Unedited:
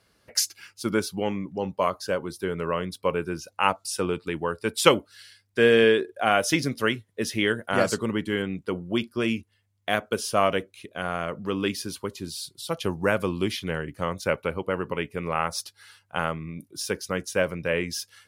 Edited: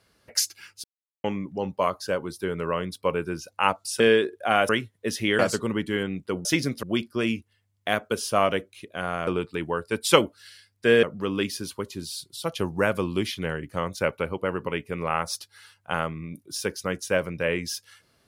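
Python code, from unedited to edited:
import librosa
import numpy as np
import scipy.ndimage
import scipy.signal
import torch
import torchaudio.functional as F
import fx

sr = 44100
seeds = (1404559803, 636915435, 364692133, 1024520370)

y = fx.edit(x, sr, fx.silence(start_s=0.84, length_s=0.4),
    fx.move(start_s=4.0, length_s=1.76, to_s=11.28),
    fx.move(start_s=6.45, length_s=0.38, to_s=8.84),
    fx.cut(start_s=7.53, length_s=0.25), tone=tone)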